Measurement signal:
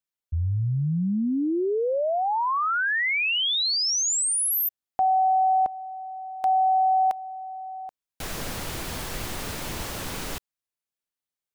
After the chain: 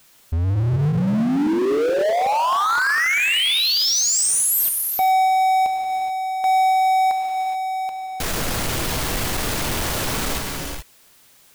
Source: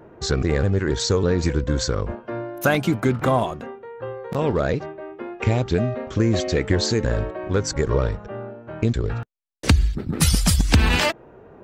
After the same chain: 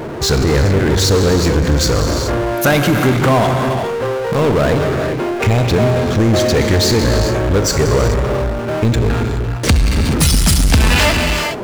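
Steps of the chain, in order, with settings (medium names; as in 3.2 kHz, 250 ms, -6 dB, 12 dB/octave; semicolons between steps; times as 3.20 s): gated-style reverb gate 450 ms flat, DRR 5.5 dB; power-law waveshaper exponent 0.5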